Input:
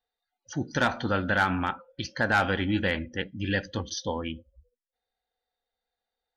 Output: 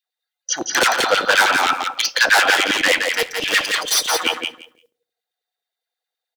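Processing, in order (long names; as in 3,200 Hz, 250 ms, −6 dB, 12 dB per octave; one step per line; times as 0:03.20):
0:03.00–0:04.24: lower of the sound and its delayed copy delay 6.4 ms
noise gate with hold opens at −51 dBFS
high-shelf EQ 2,500 Hz +12 dB
in parallel at +0.5 dB: downward compressor 5 to 1, threshold −37 dBFS, peak gain reduction 18.5 dB
on the sum: wave folding −18 dBFS
auto-filter high-pass saw down 9.6 Hz 380–3,100 Hz
repeating echo 171 ms, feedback 15%, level −5 dB
on a send at −18 dB: convolution reverb RT60 0.55 s, pre-delay 3 ms
on the sum: level +7.5 dB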